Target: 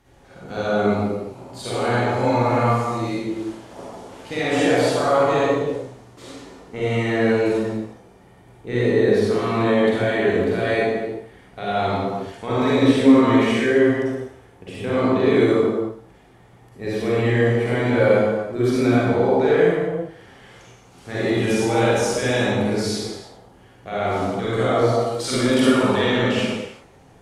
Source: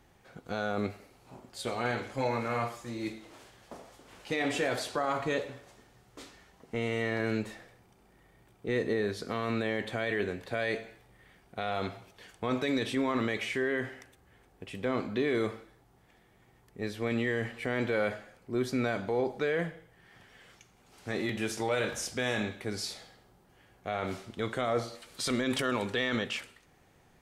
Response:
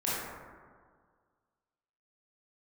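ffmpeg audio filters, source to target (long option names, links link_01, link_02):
-filter_complex "[1:a]atrim=start_sample=2205,afade=type=out:start_time=0.3:duration=0.01,atrim=end_sample=13671,asetrate=24696,aresample=44100[link_01];[0:a][link_01]afir=irnorm=-1:irlink=0"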